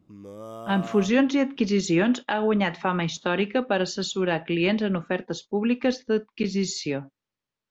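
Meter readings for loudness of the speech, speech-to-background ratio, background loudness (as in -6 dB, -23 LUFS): -25.0 LUFS, 14.5 dB, -39.5 LUFS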